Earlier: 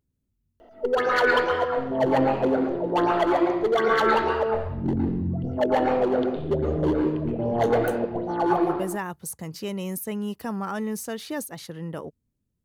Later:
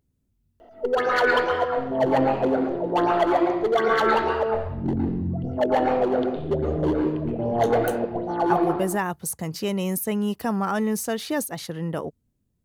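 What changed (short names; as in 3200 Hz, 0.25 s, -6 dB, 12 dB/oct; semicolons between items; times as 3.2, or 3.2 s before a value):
speech +5.0 dB; master: add bell 710 Hz +3.5 dB 0.25 oct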